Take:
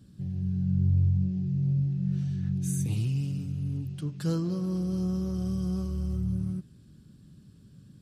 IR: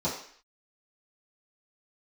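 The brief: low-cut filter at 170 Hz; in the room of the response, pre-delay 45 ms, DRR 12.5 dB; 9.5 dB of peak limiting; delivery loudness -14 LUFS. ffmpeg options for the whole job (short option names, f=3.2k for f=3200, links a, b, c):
-filter_complex "[0:a]highpass=170,alimiter=level_in=5.5dB:limit=-24dB:level=0:latency=1,volume=-5.5dB,asplit=2[a][b];[1:a]atrim=start_sample=2205,adelay=45[c];[b][c]afir=irnorm=-1:irlink=0,volume=-21dB[d];[a][d]amix=inputs=2:normalize=0,volume=23.5dB"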